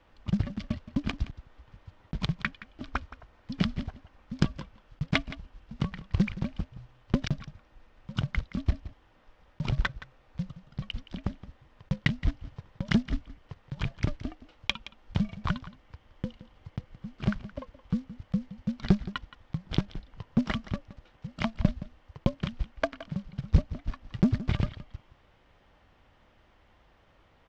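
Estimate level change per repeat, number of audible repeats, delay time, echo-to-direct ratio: no steady repeat, 1, 0.17 s, -16.0 dB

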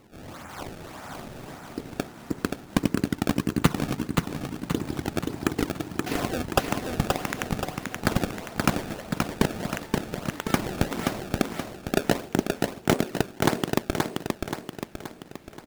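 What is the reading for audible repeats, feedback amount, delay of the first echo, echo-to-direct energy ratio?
6, 49%, 0.527 s, -2.5 dB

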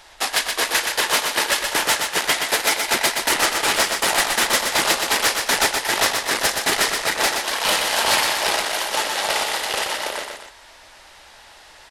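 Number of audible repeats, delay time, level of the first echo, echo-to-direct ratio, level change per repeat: 2, 0.123 s, -5.0 dB, -4.0 dB, -5.5 dB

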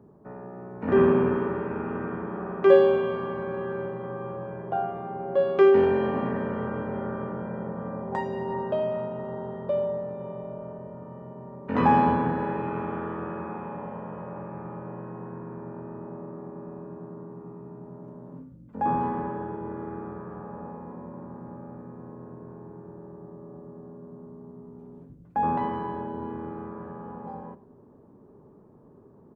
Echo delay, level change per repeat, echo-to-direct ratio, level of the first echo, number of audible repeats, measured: 82 ms, no steady repeat, -19.0 dB, -19.0 dB, 1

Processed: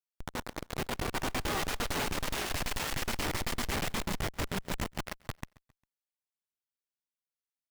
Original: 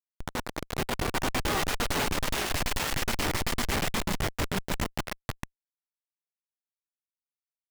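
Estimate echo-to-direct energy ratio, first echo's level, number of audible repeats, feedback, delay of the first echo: -22.5 dB, -23.5 dB, 2, 45%, 0.134 s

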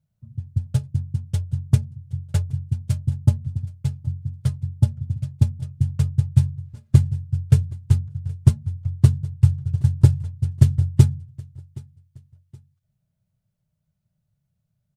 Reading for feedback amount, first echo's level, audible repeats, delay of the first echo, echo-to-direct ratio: 37%, -23.0 dB, 2, 0.771 s, -22.5 dB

